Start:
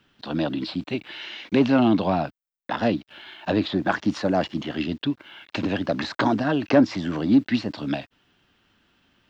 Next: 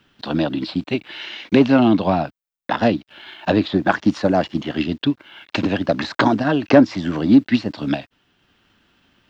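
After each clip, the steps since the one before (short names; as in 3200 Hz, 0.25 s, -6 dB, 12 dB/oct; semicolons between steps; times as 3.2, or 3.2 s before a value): transient shaper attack +3 dB, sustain -3 dB; gain +4 dB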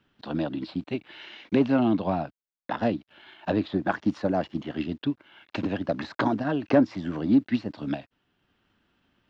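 high shelf 2500 Hz -7.5 dB; gain -8 dB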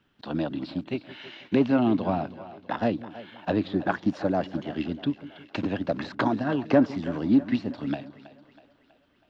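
split-band echo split 420 Hz, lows 0.164 s, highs 0.323 s, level -15 dB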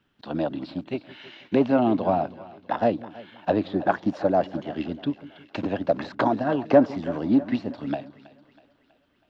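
dynamic EQ 650 Hz, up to +8 dB, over -39 dBFS, Q 1; gain -1.5 dB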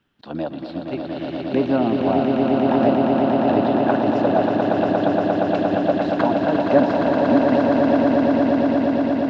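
swelling echo 0.117 s, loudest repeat 8, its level -5.5 dB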